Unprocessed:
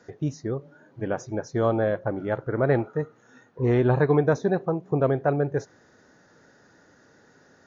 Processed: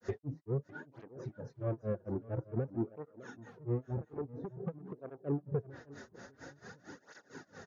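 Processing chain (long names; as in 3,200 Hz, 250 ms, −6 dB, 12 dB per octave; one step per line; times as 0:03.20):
brickwall limiter −20.5 dBFS, peak gain reduction 11 dB
treble cut that deepens with the level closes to 650 Hz, closed at −27.5 dBFS
dynamic equaliser 740 Hz, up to −6 dB, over −46 dBFS, Q 1.1
downward compressor 3 to 1, threshold −38 dBFS, peak gain reduction 10 dB
soft clipping −34.5 dBFS, distortion −16 dB
granular cloud 190 ms, grains 4.4 per second, spray 11 ms, pitch spread up and down by 0 semitones
repeating echo 605 ms, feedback 24%, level −18 dB
through-zero flanger with one copy inverted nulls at 0.49 Hz, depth 7.2 ms
level +11.5 dB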